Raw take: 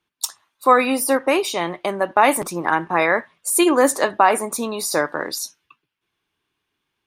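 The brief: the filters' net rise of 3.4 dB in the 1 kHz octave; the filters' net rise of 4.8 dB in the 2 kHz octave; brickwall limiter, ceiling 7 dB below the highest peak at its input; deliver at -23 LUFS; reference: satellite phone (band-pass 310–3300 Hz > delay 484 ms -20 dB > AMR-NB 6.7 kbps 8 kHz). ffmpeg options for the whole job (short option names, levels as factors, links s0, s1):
-af "equalizer=f=1000:t=o:g=3,equalizer=f=2000:t=o:g=5.5,alimiter=limit=0.562:level=0:latency=1,highpass=310,lowpass=3300,aecho=1:1:484:0.1,volume=0.794" -ar 8000 -c:a libopencore_amrnb -b:a 6700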